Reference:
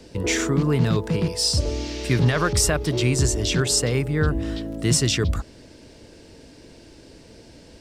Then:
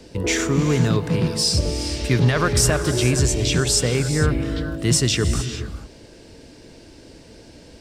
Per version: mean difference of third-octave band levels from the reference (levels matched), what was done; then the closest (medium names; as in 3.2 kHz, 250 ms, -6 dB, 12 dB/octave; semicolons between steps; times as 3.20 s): 2.5 dB: gated-style reverb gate 470 ms rising, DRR 9 dB; trim +1.5 dB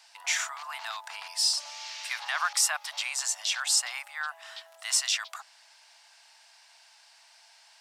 16.0 dB: steep high-pass 730 Hz 72 dB/octave; trim -3 dB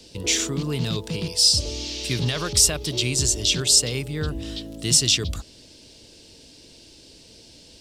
5.0 dB: resonant high shelf 2.4 kHz +10 dB, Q 1.5; trim -6 dB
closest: first